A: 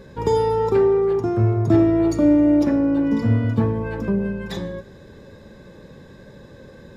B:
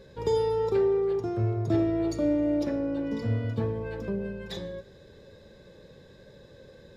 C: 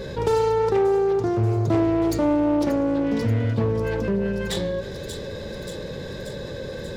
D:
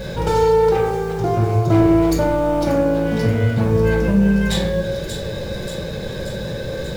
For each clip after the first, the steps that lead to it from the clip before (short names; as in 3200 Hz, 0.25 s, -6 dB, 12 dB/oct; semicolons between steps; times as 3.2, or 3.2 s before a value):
graphic EQ 250/500/1000/4000 Hz -5/+5/-4/+6 dB; gain -8.5 dB
self-modulated delay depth 0.28 ms; thin delay 0.583 s, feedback 64%, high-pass 4800 Hz, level -10 dB; fast leveller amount 50%; gain +4 dB
in parallel at -11 dB: requantised 6-bit, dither none; on the sum: reverb RT60 0.70 s, pre-delay 5 ms, DRR 0 dB